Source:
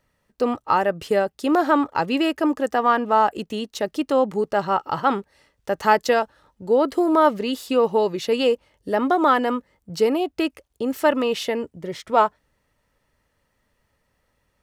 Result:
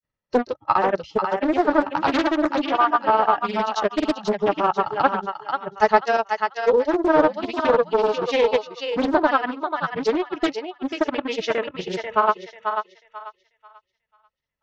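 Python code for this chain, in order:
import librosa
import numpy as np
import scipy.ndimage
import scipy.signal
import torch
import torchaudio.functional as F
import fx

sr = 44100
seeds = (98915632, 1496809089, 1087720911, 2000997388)

p1 = fx.granulator(x, sr, seeds[0], grain_ms=100.0, per_s=20.0, spray_ms=100.0, spread_st=0)
p2 = fx.noise_reduce_blind(p1, sr, reduce_db=19)
p3 = fx.transient(p2, sr, attack_db=3, sustain_db=-6)
p4 = fx.rider(p3, sr, range_db=4, speed_s=0.5)
p5 = p3 + F.gain(torch.from_numpy(p4), -3.0).numpy()
p6 = scipy.signal.sosfilt(scipy.signal.butter(12, 6400.0, 'lowpass', fs=sr, output='sos'), p5)
p7 = p6 + fx.echo_thinned(p6, sr, ms=490, feedback_pct=29, hz=640.0, wet_db=-4.5, dry=0)
p8 = fx.doppler_dist(p7, sr, depth_ms=0.58)
y = F.gain(torch.from_numpy(p8), -4.5).numpy()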